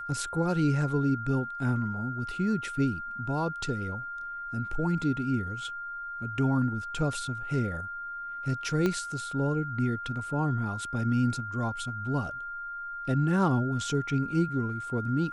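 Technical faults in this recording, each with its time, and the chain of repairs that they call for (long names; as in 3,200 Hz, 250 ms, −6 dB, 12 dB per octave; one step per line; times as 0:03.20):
whistle 1,400 Hz −35 dBFS
0:08.86: click −15 dBFS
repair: click removal
notch filter 1,400 Hz, Q 30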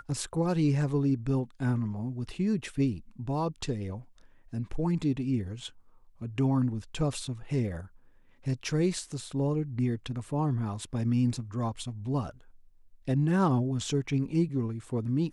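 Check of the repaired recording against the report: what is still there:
0:08.86: click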